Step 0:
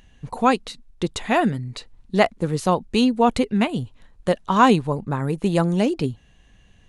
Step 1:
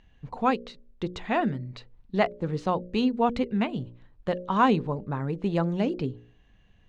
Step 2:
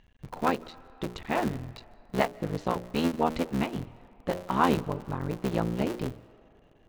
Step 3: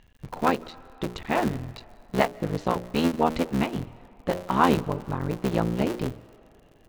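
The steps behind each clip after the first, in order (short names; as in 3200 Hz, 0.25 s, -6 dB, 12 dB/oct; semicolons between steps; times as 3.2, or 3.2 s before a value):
median filter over 3 samples; air absorption 150 m; de-hum 59.74 Hz, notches 10; gain -5.5 dB
cycle switcher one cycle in 3, muted; on a send at -20.5 dB: HPF 500 Hz 6 dB/oct + reverb RT60 3.5 s, pre-delay 0.11 s; on the sum: gain -1 dB
crackle 40/s -49 dBFS; gain +3.5 dB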